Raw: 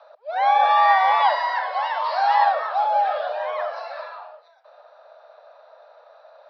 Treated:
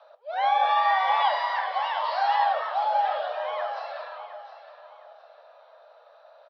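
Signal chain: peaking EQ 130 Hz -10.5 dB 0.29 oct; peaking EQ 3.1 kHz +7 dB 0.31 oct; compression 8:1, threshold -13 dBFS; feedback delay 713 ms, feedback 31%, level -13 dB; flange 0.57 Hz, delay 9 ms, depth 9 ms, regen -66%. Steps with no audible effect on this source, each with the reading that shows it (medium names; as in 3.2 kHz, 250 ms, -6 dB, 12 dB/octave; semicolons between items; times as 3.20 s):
peaking EQ 130 Hz: input has nothing below 450 Hz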